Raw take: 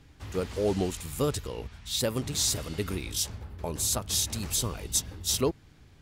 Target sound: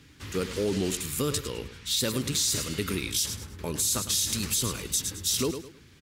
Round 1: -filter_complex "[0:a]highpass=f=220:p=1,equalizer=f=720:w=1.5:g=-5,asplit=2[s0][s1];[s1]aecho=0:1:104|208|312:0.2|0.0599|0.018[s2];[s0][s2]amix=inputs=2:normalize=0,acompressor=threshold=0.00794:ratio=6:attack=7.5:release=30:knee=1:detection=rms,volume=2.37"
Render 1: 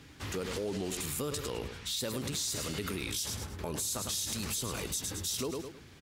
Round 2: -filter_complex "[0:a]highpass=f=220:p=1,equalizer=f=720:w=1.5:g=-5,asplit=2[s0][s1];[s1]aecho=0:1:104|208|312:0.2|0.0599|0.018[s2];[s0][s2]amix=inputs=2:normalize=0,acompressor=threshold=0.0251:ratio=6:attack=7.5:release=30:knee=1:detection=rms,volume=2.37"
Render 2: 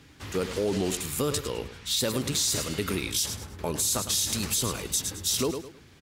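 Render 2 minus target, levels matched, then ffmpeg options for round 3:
1 kHz band +3.0 dB
-filter_complex "[0:a]highpass=f=220:p=1,equalizer=f=720:w=1.5:g=-14,asplit=2[s0][s1];[s1]aecho=0:1:104|208|312:0.2|0.0599|0.018[s2];[s0][s2]amix=inputs=2:normalize=0,acompressor=threshold=0.0251:ratio=6:attack=7.5:release=30:knee=1:detection=rms,volume=2.37"

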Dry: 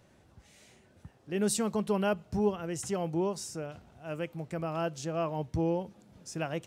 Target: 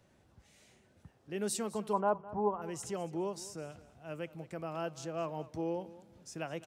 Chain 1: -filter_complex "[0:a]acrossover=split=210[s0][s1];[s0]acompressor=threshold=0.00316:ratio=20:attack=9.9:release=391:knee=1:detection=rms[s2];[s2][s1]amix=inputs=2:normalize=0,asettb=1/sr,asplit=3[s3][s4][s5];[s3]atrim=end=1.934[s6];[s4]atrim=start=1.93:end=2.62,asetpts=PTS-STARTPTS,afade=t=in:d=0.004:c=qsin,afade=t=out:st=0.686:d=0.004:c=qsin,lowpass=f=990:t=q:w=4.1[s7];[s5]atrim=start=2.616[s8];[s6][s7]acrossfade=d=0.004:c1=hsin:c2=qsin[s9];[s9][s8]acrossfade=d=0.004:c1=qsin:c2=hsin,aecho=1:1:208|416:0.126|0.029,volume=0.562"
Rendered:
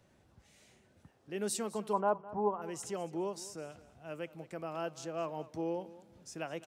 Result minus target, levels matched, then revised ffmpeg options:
compression: peak gain reduction +7 dB
-filter_complex "[0:a]acrossover=split=210[s0][s1];[s0]acompressor=threshold=0.0075:ratio=20:attack=9.9:release=391:knee=1:detection=rms[s2];[s2][s1]amix=inputs=2:normalize=0,asettb=1/sr,asplit=3[s3][s4][s5];[s3]atrim=end=1.934[s6];[s4]atrim=start=1.93:end=2.62,asetpts=PTS-STARTPTS,afade=t=in:d=0.004:c=qsin,afade=t=out:st=0.686:d=0.004:c=qsin,lowpass=f=990:t=q:w=4.1[s7];[s5]atrim=start=2.616[s8];[s6][s7]acrossfade=d=0.004:c1=hsin:c2=qsin[s9];[s9][s8]acrossfade=d=0.004:c1=qsin:c2=hsin,aecho=1:1:208|416:0.126|0.029,volume=0.562"

